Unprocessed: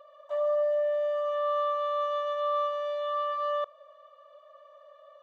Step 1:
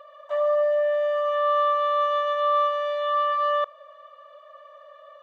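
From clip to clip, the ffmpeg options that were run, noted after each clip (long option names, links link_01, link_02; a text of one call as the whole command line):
ffmpeg -i in.wav -af "equalizer=frequency=1900:width_type=o:width=1.6:gain=7.5,volume=3.5dB" out.wav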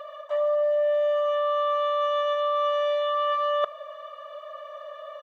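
ffmpeg -i in.wav -af "aecho=1:1:4.8:0.38,areverse,acompressor=threshold=-30dB:ratio=6,areverse,volume=7.5dB" out.wav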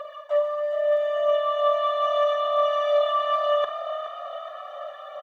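ffmpeg -i in.wav -filter_complex "[0:a]aphaser=in_gain=1:out_gain=1:delay=3:decay=0.43:speed=0.77:type=triangular,asplit=2[link_01][link_02];[link_02]adelay=48,volume=-11dB[link_03];[link_01][link_03]amix=inputs=2:normalize=0,asplit=2[link_04][link_05];[link_05]asplit=6[link_06][link_07][link_08][link_09][link_10][link_11];[link_06]adelay=420,afreqshift=37,volume=-11dB[link_12];[link_07]adelay=840,afreqshift=74,volume=-16.2dB[link_13];[link_08]adelay=1260,afreqshift=111,volume=-21.4dB[link_14];[link_09]adelay=1680,afreqshift=148,volume=-26.6dB[link_15];[link_10]adelay=2100,afreqshift=185,volume=-31.8dB[link_16];[link_11]adelay=2520,afreqshift=222,volume=-37dB[link_17];[link_12][link_13][link_14][link_15][link_16][link_17]amix=inputs=6:normalize=0[link_18];[link_04][link_18]amix=inputs=2:normalize=0" out.wav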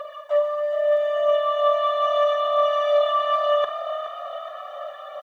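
ffmpeg -i in.wav -af "acrusher=bits=11:mix=0:aa=0.000001,volume=2dB" out.wav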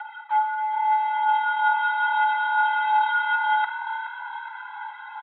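ffmpeg -i in.wav -af "highpass=frequency=320:width_type=q:width=0.5412,highpass=frequency=320:width_type=q:width=1.307,lowpass=frequency=3100:width_type=q:width=0.5176,lowpass=frequency=3100:width_type=q:width=0.7071,lowpass=frequency=3100:width_type=q:width=1.932,afreqshift=270,volume=-1.5dB" out.wav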